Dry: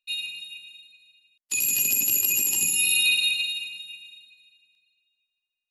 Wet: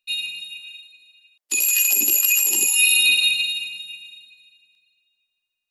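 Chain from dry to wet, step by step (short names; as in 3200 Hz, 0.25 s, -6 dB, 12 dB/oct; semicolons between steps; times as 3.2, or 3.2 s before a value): 0.6–3.28 LFO high-pass sine 1.9 Hz 300–1800 Hz; gain +4.5 dB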